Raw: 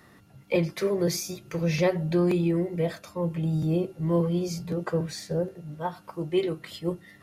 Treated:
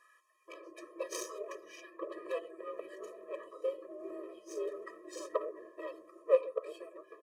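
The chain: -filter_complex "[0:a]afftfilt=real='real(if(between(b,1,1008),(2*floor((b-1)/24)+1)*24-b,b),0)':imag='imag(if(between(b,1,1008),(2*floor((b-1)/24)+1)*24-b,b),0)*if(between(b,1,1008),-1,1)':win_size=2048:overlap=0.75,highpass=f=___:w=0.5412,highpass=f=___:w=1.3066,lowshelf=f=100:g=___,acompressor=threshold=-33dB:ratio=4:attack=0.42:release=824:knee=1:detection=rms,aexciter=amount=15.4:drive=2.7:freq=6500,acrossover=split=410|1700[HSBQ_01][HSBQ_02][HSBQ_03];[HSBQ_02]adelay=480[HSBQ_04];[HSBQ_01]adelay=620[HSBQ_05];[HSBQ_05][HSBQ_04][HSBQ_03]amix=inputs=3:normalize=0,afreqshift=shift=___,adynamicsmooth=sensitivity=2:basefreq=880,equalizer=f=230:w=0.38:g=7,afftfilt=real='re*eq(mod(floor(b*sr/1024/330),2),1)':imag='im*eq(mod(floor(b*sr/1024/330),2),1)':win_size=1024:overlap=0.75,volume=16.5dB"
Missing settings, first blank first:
41, 41, -3, -130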